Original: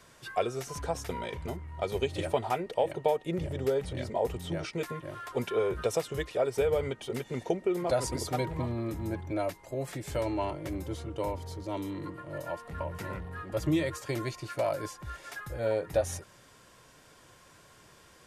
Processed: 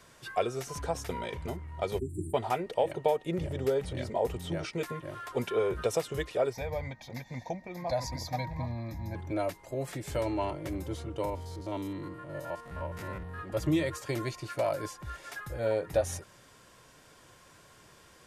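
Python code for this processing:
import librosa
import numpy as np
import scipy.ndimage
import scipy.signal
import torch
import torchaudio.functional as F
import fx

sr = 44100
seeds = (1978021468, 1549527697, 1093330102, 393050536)

y = fx.spec_erase(x, sr, start_s=1.99, length_s=0.35, low_hz=400.0, high_hz=7200.0)
y = fx.fixed_phaser(y, sr, hz=2000.0, stages=8, at=(6.52, 9.14), fade=0.02)
y = fx.spec_steps(y, sr, hold_ms=50, at=(11.25, 13.39))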